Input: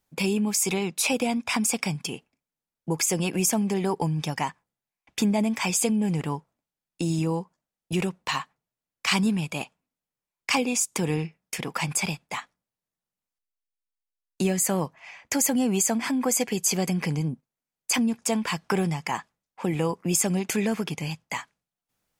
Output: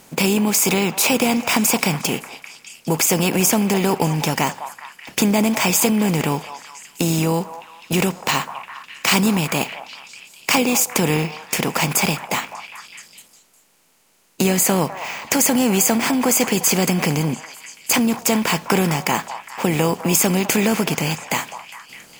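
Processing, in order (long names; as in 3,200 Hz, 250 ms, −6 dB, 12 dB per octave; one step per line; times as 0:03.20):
compressor on every frequency bin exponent 0.6
bad sample-rate conversion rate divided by 2×, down none, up hold
echo through a band-pass that steps 204 ms, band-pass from 870 Hz, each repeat 0.7 octaves, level −8 dB
level +4 dB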